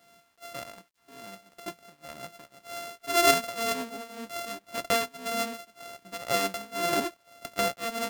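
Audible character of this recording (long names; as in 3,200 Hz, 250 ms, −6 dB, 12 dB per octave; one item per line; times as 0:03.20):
a buzz of ramps at a fixed pitch in blocks of 64 samples
tremolo triangle 1.9 Hz, depth 95%
a quantiser's noise floor 12 bits, dither none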